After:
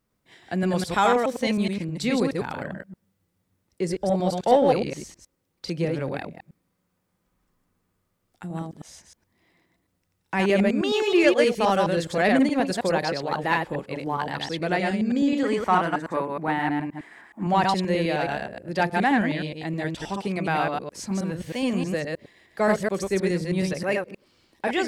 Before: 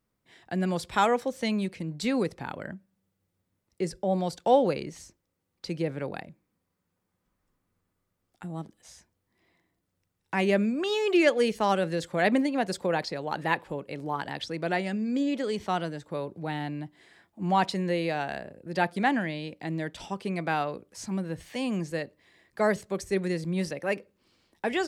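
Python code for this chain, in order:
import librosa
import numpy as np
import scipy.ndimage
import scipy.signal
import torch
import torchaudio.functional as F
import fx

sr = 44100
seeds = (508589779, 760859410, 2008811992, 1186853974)

p1 = fx.reverse_delay(x, sr, ms=105, wet_db=-2.5)
p2 = fx.graphic_eq_10(p1, sr, hz=(125, 250, 500, 1000, 2000, 4000), db=(-6, 5, -3, 9, 6, -8), at=(15.43, 17.47))
p3 = 10.0 ** (-19.5 / 20.0) * np.tanh(p2 / 10.0 ** (-19.5 / 20.0))
y = p2 + F.gain(torch.from_numpy(p3), -7.0).numpy()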